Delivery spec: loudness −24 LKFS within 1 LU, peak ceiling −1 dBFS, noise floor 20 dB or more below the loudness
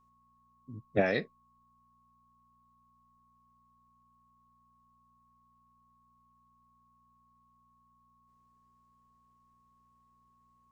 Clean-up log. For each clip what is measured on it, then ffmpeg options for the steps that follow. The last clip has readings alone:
mains hum 60 Hz; hum harmonics up to 240 Hz; level of the hum −71 dBFS; interfering tone 1,100 Hz; level of the tone −66 dBFS; integrated loudness −33.0 LKFS; sample peak −13.5 dBFS; target loudness −24.0 LKFS
→ -af "bandreject=frequency=60:width_type=h:width=4,bandreject=frequency=120:width_type=h:width=4,bandreject=frequency=180:width_type=h:width=4,bandreject=frequency=240:width_type=h:width=4"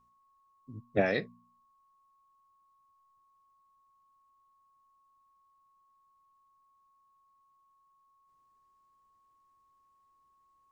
mains hum none found; interfering tone 1,100 Hz; level of the tone −66 dBFS
→ -af "bandreject=frequency=1100:width=30"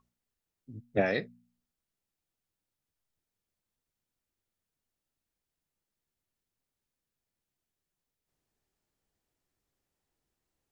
interfering tone none found; integrated loudness −31.0 LKFS; sample peak −13.0 dBFS; target loudness −24.0 LKFS
→ -af "volume=7dB"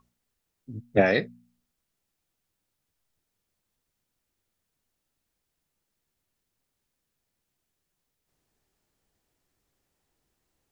integrated loudness −24.0 LKFS; sample peak −6.0 dBFS; background noise floor −82 dBFS

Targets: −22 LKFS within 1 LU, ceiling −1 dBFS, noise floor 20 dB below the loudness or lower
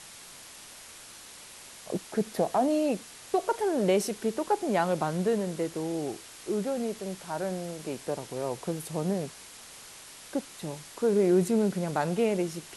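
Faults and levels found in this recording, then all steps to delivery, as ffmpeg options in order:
background noise floor −48 dBFS; target noise floor −50 dBFS; integrated loudness −29.5 LKFS; sample peak −12.5 dBFS; target loudness −22.0 LKFS
→ -af "afftdn=noise_reduction=6:noise_floor=-48"
-af "volume=7.5dB"

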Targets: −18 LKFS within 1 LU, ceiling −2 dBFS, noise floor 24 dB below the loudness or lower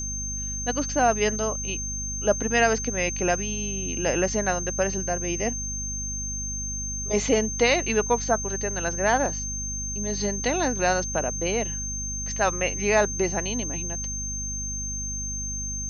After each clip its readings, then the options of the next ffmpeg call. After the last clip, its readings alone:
mains hum 50 Hz; hum harmonics up to 250 Hz; level of the hum −32 dBFS; interfering tone 6,300 Hz; level of the tone −30 dBFS; integrated loudness −25.5 LKFS; sample peak −7.0 dBFS; target loudness −18.0 LKFS
→ -af "bandreject=frequency=50:width_type=h:width=4,bandreject=frequency=100:width_type=h:width=4,bandreject=frequency=150:width_type=h:width=4,bandreject=frequency=200:width_type=h:width=4,bandreject=frequency=250:width_type=h:width=4"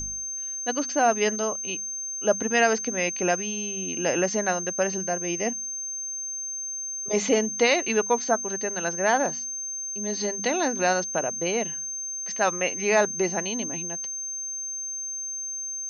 mains hum none found; interfering tone 6,300 Hz; level of the tone −30 dBFS
→ -af "bandreject=frequency=6300:width=30"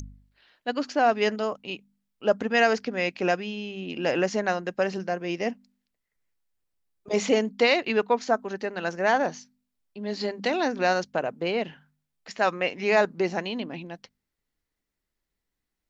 interfering tone none found; integrated loudness −26.0 LKFS; sample peak −7.5 dBFS; target loudness −18.0 LKFS
→ -af "volume=8dB,alimiter=limit=-2dB:level=0:latency=1"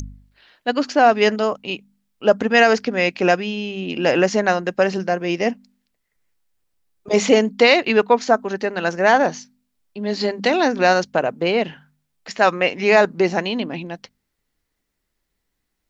integrated loudness −18.5 LKFS; sample peak −2.0 dBFS; background noise floor −76 dBFS

